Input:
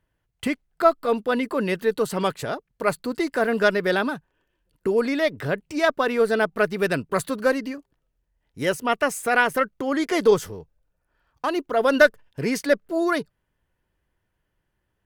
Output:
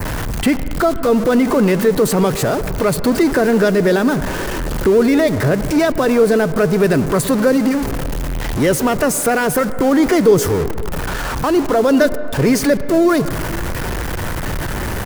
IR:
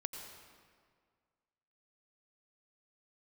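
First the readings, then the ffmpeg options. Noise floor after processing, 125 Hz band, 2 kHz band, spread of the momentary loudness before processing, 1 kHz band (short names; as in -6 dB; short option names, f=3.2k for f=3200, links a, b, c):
-22 dBFS, +16.0 dB, +2.5 dB, 9 LU, +5.0 dB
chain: -filter_complex "[0:a]aeval=exprs='val(0)+0.5*0.0531*sgn(val(0))':c=same,adynamicequalizer=threshold=0.00794:dfrequency=3300:dqfactor=1.6:tfrequency=3300:tqfactor=1.6:attack=5:release=100:ratio=0.375:range=2:mode=cutabove:tftype=bell,acrossover=split=470|3000[a][b][c];[b]acompressor=threshold=-28dB:ratio=3[d];[a][d][c]amix=inputs=3:normalize=0,asplit=2[e][f];[f]alimiter=limit=-19dB:level=0:latency=1,volume=1dB[g];[e][g]amix=inputs=2:normalize=0,asplit=2[h][i];[i]adelay=542.3,volume=-23dB,highshelf=f=4k:g=-12.2[j];[h][j]amix=inputs=2:normalize=0,asplit=2[k][l];[1:a]atrim=start_sample=2205,lowpass=2k[m];[l][m]afir=irnorm=-1:irlink=0,volume=-4dB[n];[k][n]amix=inputs=2:normalize=0,volume=1dB"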